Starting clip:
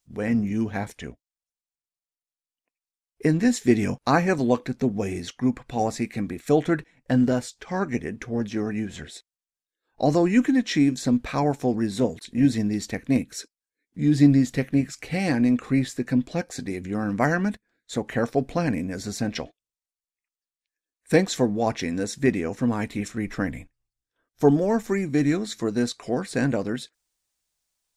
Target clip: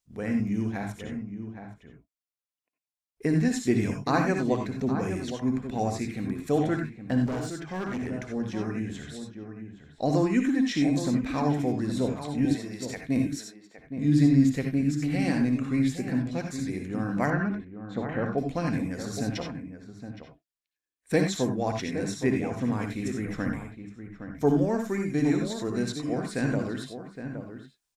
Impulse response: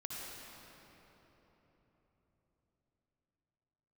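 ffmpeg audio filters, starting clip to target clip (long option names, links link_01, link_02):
-filter_complex "[0:a]asettb=1/sr,asplit=3[link_01][link_02][link_03];[link_01]atrim=end=12.454[link_04];[link_02]atrim=start=12.45:end=12.97,asetpts=PTS-STARTPTS,afade=type=in:duration=0.004:curve=qsin,afade=type=out:start_time=0.516:duration=0.004:curve=qsin,highpass=460[link_05];[link_03]atrim=start=12.966[link_06];[link_04][link_05]acrossfade=duration=0.004:curve1=hsin:curve2=qsin[link_07];[link_07][link_06]acrossfade=duration=0.004:curve1=qsin:curve2=hsin,asplit=2[link_08][link_09];[link_09]adelay=816.3,volume=-9dB,highshelf=frequency=4000:gain=-18.4[link_10];[link_08][link_10]amix=inputs=2:normalize=0[link_11];[1:a]atrim=start_sample=2205,atrim=end_sample=4410[link_12];[link_11][link_12]afir=irnorm=-1:irlink=0,asettb=1/sr,asplit=3[link_13][link_14][link_15];[link_13]atrim=end=7.264[link_16];[link_14]atrim=start=7.26:end=8.11,asetpts=PTS-STARTPTS,afade=type=in:duration=0.004:curve=qsin,afade=type=out:start_time=0.846:duration=0.004:curve=qsin,volume=28dB,asoftclip=hard,volume=-28dB[link_17];[link_15]atrim=start=8.106[link_18];[link_16][link_17]acrossfade=duration=0.004:curve1=hsin:curve2=qsin[link_19];[link_19][link_18]acrossfade=duration=0.004:curve1=qsin:curve2=hsin,asettb=1/sr,asplit=3[link_20][link_21][link_22];[link_20]atrim=end=17.304[link_23];[link_21]atrim=start=17.3:end=18.38,asetpts=PTS-STARTPTS,afade=type=in:duration=0.004:curve=qsin,afade=type=out:start_time=1.076:duration=0.004:curve=qsin,lowpass=2400[link_24];[link_22]atrim=start=18.376[link_25];[link_23][link_24]acrossfade=duration=0.004:curve1=hsin:curve2=qsin[link_26];[link_26][link_25]acrossfade=duration=0.004:curve1=qsin:curve2=hsin"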